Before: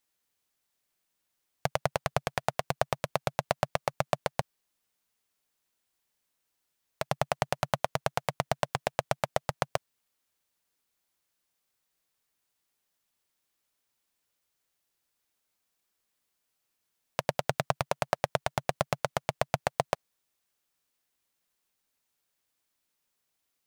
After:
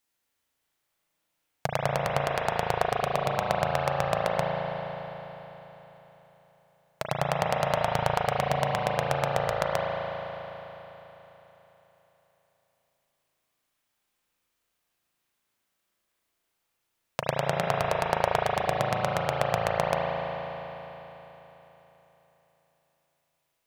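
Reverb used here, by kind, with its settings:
spring reverb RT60 3.8 s, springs 36 ms, chirp 70 ms, DRR −3 dB

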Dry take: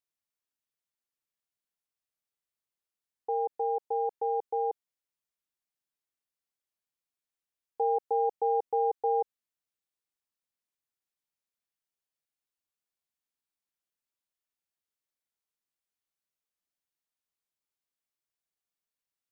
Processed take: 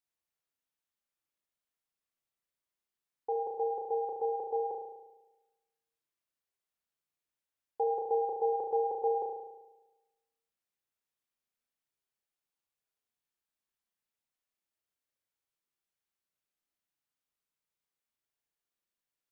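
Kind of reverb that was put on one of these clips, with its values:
spring reverb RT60 1.1 s, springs 35 ms, chirp 35 ms, DRR 0.5 dB
level −2 dB

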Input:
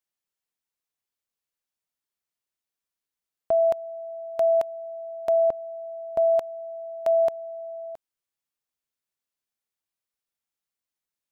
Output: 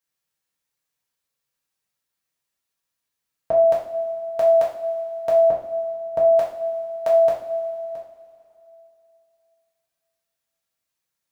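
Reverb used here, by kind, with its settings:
coupled-rooms reverb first 0.48 s, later 2.9 s, from −17 dB, DRR −5.5 dB
level +1 dB

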